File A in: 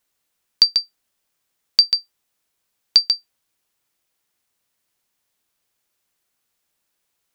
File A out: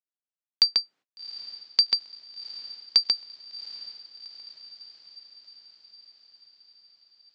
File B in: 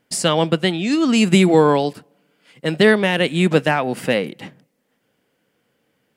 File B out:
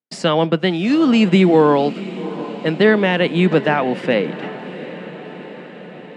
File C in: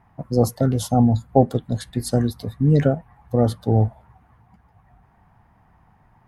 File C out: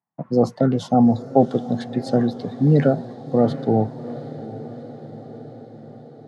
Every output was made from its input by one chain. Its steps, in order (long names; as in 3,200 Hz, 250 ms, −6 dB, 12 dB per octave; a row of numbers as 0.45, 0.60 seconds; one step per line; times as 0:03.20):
noise gate −48 dBFS, range −33 dB
high-pass filter 150 Hz 24 dB per octave
high-shelf EQ 5,200 Hz −7.5 dB
in parallel at −1 dB: brickwall limiter −11 dBFS
on the sum: high-frequency loss of the air 110 metres
on a send: feedback delay with all-pass diffusion 748 ms, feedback 64%, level −15 dB
on the sum: level −2 dB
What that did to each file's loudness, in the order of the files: −8.0, +0.5, +1.0 LU